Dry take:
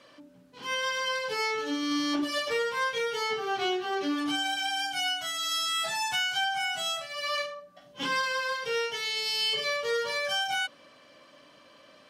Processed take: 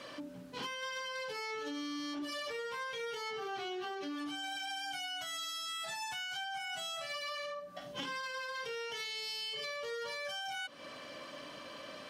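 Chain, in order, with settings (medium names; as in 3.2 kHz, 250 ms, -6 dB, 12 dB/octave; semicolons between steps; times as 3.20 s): peak limiter -30 dBFS, peak gain reduction 11.5 dB; compression, threshold -46 dBFS, peak gain reduction 11.5 dB; trim +7.5 dB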